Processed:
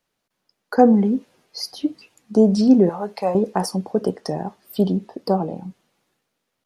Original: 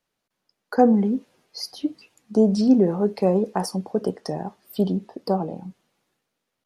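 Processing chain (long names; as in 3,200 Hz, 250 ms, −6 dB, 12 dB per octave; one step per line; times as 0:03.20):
0:02.89–0:03.35: low shelf with overshoot 520 Hz −11 dB, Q 1.5
level +3 dB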